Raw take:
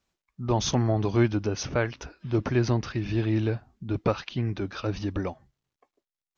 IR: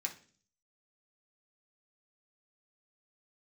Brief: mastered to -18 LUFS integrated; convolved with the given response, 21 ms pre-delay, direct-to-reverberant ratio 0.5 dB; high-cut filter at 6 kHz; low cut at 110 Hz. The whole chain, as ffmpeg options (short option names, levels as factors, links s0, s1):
-filter_complex "[0:a]highpass=110,lowpass=6000,asplit=2[s0][s1];[1:a]atrim=start_sample=2205,adelay=21[s2];[s1][s2]afir=irnorm=-1:irlink=0,volume=0.891[s3];[s0][s3]amix=inputs=2:normalize=0,volume=2.99"